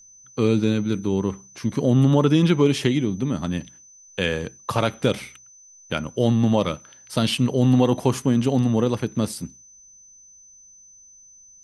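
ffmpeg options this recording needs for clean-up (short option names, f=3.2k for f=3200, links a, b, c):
-af "bandreject=f=6.1k:w=30"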